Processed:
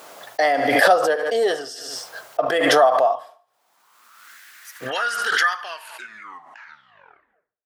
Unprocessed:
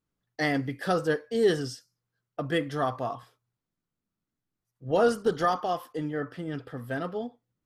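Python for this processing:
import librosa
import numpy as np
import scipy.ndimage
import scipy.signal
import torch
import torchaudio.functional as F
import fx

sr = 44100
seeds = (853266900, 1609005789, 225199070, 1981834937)

y = fx.tape_stop_end(x, sr, length_s=2.09)
y = fx.filter_sweep_highpass(y, sr, from_hz=650.0, to_hz=1700.0, start_s=3.5, end_s=4.41, q=3.6)
y = fx.echo_feedback(y, sr, ms=73, feedback_pct=43, wet_db=-18)
y = fx.pre_swell(y, sr, db_per_s=32.0)
y = y * librosa.db_to_amplitude(4.5)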